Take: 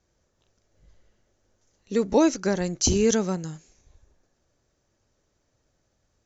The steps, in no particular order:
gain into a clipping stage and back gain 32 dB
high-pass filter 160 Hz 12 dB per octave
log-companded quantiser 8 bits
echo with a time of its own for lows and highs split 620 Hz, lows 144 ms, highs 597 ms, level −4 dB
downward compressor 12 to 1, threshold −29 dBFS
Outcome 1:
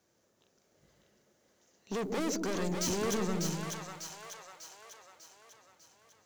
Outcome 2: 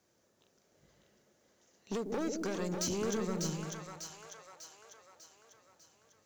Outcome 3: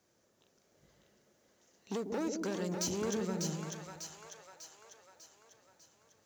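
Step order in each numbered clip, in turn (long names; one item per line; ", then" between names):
log-companded quantiser, then high-pass filter, then gain into a clipping stage and back, then downward compressor, then echo with a time of its own for lows and highs
high-pass filter, then downward compressor, then gain into a clipping stage and back, then echo with a time of its own for lows and highs, then log-companded quantiser
downward compressor, then gain into a clipping stage and back, then high-pass filter, then log-companded quantiser, then echo with a time of its own for lows and highs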